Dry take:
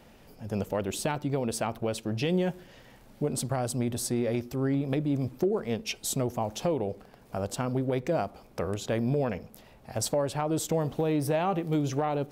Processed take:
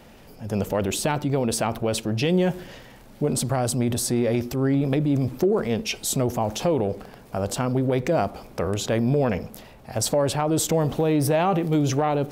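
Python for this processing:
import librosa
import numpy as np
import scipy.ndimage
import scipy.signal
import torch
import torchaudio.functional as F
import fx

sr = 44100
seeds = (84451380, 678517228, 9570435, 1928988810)

y = fx.transient(x, sr, attack_db=-1, sustain_db=5)
y = y * 10.0 ** (6.0 / 20.0)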